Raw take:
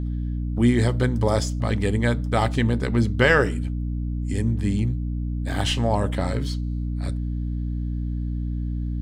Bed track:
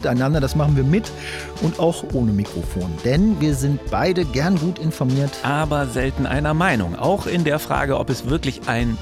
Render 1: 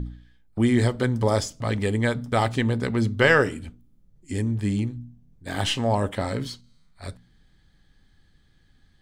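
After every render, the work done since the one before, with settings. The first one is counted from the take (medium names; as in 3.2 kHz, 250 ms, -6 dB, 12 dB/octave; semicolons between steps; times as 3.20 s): de-hum 60 Hz, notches 5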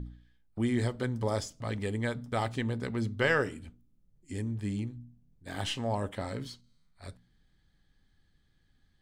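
trim -9 dB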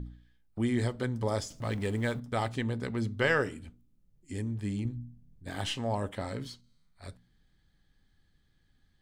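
1.50–2.20 s: companding laws mixed up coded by mu; 4.85–5.50 s: bass shelf 300 Hz +7 dB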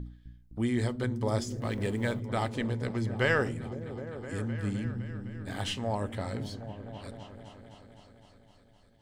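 delay with an opening low-pass 256 ms, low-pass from 200 Hz, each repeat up 1 oct, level -6 dB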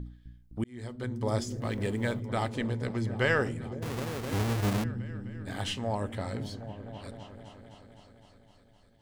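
0.64–1.30 s: fade in; 3.82–4.84 s: square wave that keeps the level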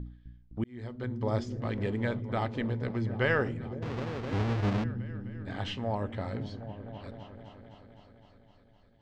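distance through air 180 m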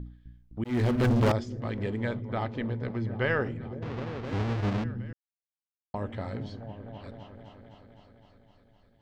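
0.64–1.32 s: waveshaping leveller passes 5; 2.19–4.25 s: distance through air 70 m; 5.13–5.94 s: mute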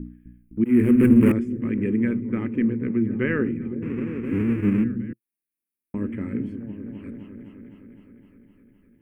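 FFT filter 120 Hz 0 dB, 220 Hz +13 dB, 340 Hz +12 dB, 490 Hz 0 dB, 710 Hz -18 dB, 1.1 kHz -5 dB, 2.5 kHz +6 dB, 3.9 kHz -26 dB, 6.6 kHz -13 dB, 9.4 kHz +9 dB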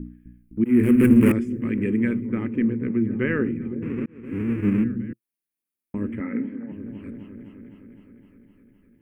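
0.83–2.27 s: treble shelf 2.1 kHz +6.5 dB; 4.06–4.82 s: fade in equal-power; 6.20–6.72 s: cabinet simulation 250–2600 Hz, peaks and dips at 250 Hz +7 dB, 360 Hz -5 dB, 510 Hz +5 dB, 840 Hz +5 dB, 1.3 kHz +6 dB, 2 kHz +9 dB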